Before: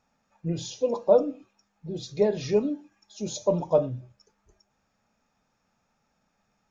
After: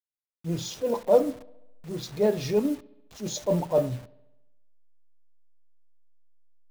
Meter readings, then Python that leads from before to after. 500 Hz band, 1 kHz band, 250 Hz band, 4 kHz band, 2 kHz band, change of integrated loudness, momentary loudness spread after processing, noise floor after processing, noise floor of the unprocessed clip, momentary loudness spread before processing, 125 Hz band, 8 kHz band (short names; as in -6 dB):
-0.5 dB, 0.0 dB, +1.0 dB, +1.5 dB, +2.5 dB, 0.0 dB, 16 LU, under -85 dBFS, -74 dBFS, 15 LU, +1.0 dB, n/a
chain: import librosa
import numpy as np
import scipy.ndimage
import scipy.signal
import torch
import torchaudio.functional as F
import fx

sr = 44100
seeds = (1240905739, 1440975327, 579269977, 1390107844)

p1 = fx.delta_hold(x, sr, step_db=-42.5)
p2 = fx.transient(p1, sr, attack_db=-7, sustain_db=-1)
p3 = fx.quant_float(p2, sr, bits=2)
p4 = p2 + F.gain(torch.from_numpy(p3), -9.0).numpy()
y = fx.echo_bbd(p4, sr, ms=69, stages=2048, feedback_pct=61, wet_db=-22.5)